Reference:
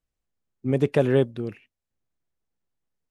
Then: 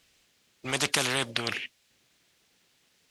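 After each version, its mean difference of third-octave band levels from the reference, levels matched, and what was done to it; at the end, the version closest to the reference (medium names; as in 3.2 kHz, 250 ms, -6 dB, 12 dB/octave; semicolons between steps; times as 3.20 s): 15.0 dB: frequency weighting D; spectrum-flattening compressor 4:1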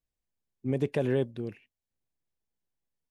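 1.0 dB: peaking EQ 1.3 kHz -8.5 dB 0.2 oct; peak limiter -12 dBFS, peak gain reduction 4.5 dB; trim -5 dB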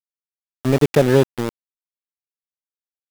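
8.0 dB: in parallel at -1 dB: compression 8:1, threshold -31 dBFS, peak gain reduction 16.5 dB; on the sum: small samples zeroed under -24 dBFS; trim +4.5 dB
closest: second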